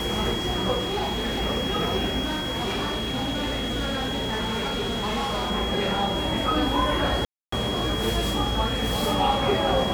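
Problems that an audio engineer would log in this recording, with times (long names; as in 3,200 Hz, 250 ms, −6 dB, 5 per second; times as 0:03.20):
whistle 3,300 Hz −30 dBFS
0:00.81–0:01.41: clipping −23 dBFS
0:02.24–0:05.51: clipping −23.5 dBFS
0:07.25–0:07.52: drop-out 274 ms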